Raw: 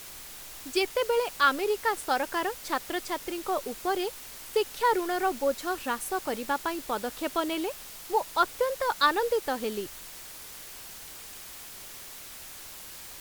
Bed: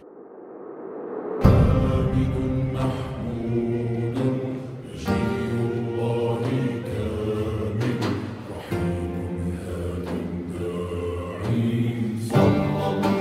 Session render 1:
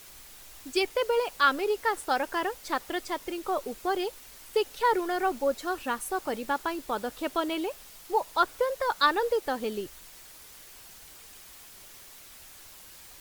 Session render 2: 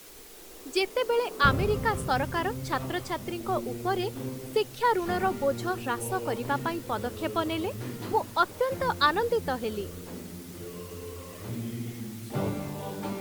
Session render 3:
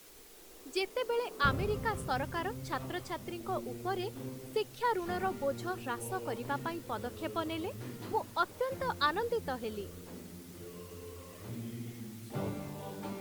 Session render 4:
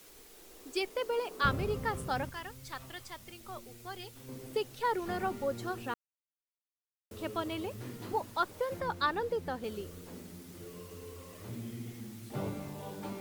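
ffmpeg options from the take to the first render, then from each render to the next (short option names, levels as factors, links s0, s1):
-af "afftdn=nr=6:nf=-44"
-filter_complex "[1:a]volume=0.237[s0];[0:a][s0]amix=inputs=2:normalize=0"
-af "volume=0.447"
-filter_complex "[0:a]asettb=1/sr,asplit=3[s0][s1][s2];[s0]atrim=end=2.294[s3];[s1]atrim=start=2.29:end=4.29,asetpts=PTS-STARTPTS,afade=t=in:d=0.004:c=qsin,afade=t=out:st=1.996:d=0.004:c=qsin,equalizer=f=320:w=0.31:g=-12.5[s4];[s2]atrim=start=4.286[s5];[s3][s4]acrossfade=d=0.004:c1=hsin:c2=qsin[s6];[s6][s5]acrossfade=d=0.004:c1=qsin:c2=hsin,asettb=1/sr,asplit=3[s7][s8][s9];[s7]atrim=end=8.804[s10];[s8]atrim=start=8.8:end=9.64,asetpts=PTS-STARTPTS,afade=t=in:d=0.004:c=qsin,afade=t=out:st=0.836:d=0.004:c=qsin,highshelf=f=4500:g=-6.5[s11];[s9]atrim=start=9.636[s12];[s10][s11]acrossfade=d=0.004:c1=hsin:c2=qsin[s13];[s13][s12]acrossfade=d=0.004:c1=qsin:c2=hsin,asplit=3[s14][s15][s16];[s14]atrim=end=5.94,asetpts=PTS-STARTPTS,afade=t=out:st=5.936:d=0.004:c=hsin[s17];[s15]atrim=start=5.94:end=7.11,asetpts=PTS-STARTPTS,volume=0[s18];[s16]atrim=start=7.11,asetpts=PTS-STARTPTS,afade=t=in:d=0.004:c=hsin[s19];[s17][s18][s19]concat=n=3:v=0:a=1"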